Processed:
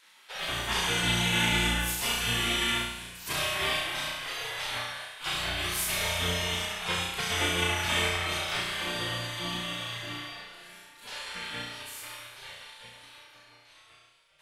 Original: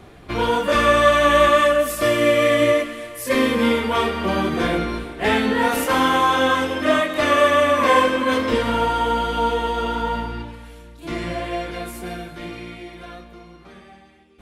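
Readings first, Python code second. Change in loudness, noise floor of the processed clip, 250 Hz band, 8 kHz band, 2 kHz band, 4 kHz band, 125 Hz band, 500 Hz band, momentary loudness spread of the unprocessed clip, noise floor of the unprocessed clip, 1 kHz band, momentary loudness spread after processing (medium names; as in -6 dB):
-10.0 dB, -58 dBFS, -16.0 dB, +0.5 dB, -7.5 dB, -1.0 dB, -4.5 dB, -20.5 dB, 17 LU, -45 dBFS, -16.5 dB, 17 LU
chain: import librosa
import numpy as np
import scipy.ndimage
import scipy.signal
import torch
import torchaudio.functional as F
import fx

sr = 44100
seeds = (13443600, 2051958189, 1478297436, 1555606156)

y = fx.spec_gate(x, sr, threshold_db=-20, keep='weak')
y = fx.room_flutter(y, sr, wall_m=5.8, rt60_s=0.8)
y = y * librosa.db_to_amplitude(-2.0)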